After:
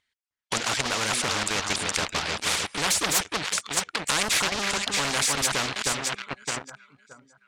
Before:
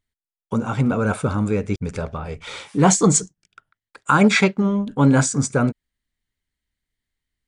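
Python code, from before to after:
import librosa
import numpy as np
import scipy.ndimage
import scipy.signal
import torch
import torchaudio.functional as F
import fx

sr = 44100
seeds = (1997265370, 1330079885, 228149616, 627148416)

p1 = fx.dereverb_blind(x, sr, rt60_s=0.83)
p2 = p1 + fx.echo_alternate(p1, sr, ms=309, hz=1800.0, feedback_pct=51, wet_db=-9.0, dry=0)
p3 = fx.leveller(p2, sr, passes=3)
p4 = scipy.signal.sosfilt(scipy.signal.butter(2, 2600.0, 'lowpass', fs=sr, output='sos'), p3)
p5 = np.diff(p4, prepend=0.0)
p6 = fx.level_steps(p5, sr, step_db=19)
p7 = p5 + (p6 * librosa.db_to_amplitude(1.5))
p8 = fx.low_shelf(p7, sr, hz=120.0, db=10.5)
p9 = fx.spectral_comp(p8, sr, ratio=4.0)
y = p9 * librosa.db_to_amplitude(4.5)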